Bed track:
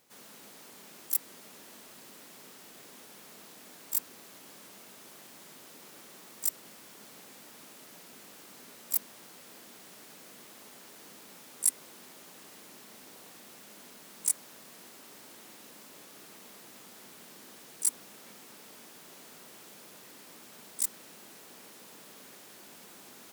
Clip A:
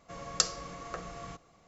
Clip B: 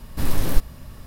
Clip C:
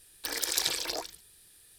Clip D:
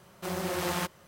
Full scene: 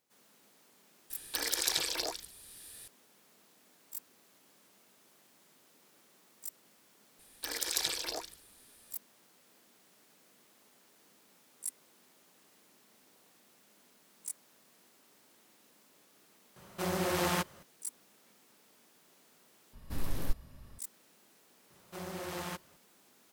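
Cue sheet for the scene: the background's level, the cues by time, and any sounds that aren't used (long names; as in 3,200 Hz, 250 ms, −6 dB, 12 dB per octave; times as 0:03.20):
bed track −13 dB
0:01.10: mix in C −1.5 dB + multiband upward and downward compressor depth 40%
0:07.19: mix in C −4 dB
0:16.56: mix in D
0:19.73: overwrite with B −13.5 dB
0:21.70: mix in D −9 dB
not used: A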